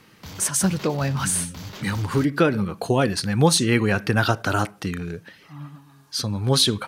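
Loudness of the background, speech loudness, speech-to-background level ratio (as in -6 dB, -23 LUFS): -39.5 LUFS, -22.5 LUFS, 17.0 dB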